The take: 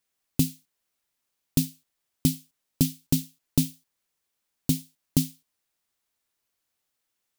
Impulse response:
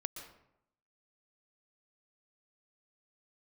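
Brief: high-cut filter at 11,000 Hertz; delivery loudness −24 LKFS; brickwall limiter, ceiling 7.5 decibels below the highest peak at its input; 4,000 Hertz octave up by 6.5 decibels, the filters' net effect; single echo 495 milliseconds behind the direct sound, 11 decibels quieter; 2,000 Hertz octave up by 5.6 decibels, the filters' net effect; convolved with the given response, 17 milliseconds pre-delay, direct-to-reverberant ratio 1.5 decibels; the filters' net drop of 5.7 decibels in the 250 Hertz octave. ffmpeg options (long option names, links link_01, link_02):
-filter_complex "[0:a]lowpass=11000,equalizer=frequency=250:width_type=o:gain=-7.5,equalizer=frequency=2000:width_type=o:gain=4.5,equalizer=frequency=4000:width_type=o:gain=7,alimiter=limit=-14.5dB:level=0:latency=1,aecho=1:1:495:0.282,asplit=2[link_01][link_02];[1:a]atrim=start_sample=2205,adelay=17[link_03];[link_02][link_03]afir=irnorm=-1:irlink=0,volume=-0.5dB[link_04];[link_01][link_04]amix=inputs=2:normalize=0,volume=10dB"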